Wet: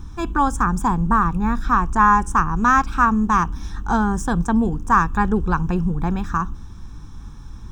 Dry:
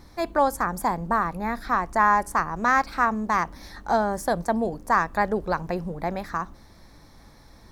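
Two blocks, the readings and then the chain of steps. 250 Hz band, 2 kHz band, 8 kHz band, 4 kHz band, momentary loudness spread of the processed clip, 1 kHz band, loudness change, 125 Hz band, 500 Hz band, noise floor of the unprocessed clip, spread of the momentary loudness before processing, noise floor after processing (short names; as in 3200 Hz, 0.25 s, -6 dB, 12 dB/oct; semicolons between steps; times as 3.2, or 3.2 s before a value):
+9.5 dB, +3.0 dB, +4.5 dB, +0.5 dB, 9 LU, +4.5 dB, +5.5 dB, +12.0 dB, -3.5 dB, -51 dBFS, 10 LU, -36 dBFS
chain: low shelf 180 Hz +11.5 dB; fixed phaser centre 3000 Hz, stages 8; gain +6.5 dB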